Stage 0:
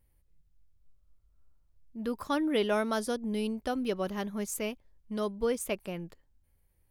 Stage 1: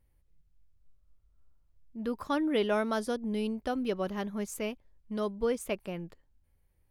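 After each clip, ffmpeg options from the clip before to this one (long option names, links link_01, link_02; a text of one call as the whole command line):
ffmpeg -i in.wav -af "highshelf=frequency=5300:gain=-7" out.wav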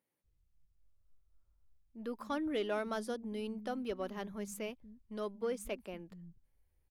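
ffmpeg -i in.wav -filter_complex "[0:a]asoftclip=type=tanh:threshold=-20dB,acrossover=split=180[link_01][link_02];[link_01]adelay=240[link_03];[link_03][link_02]amix=inputs=2:normalize=0,volume=-5.5dB" out.wav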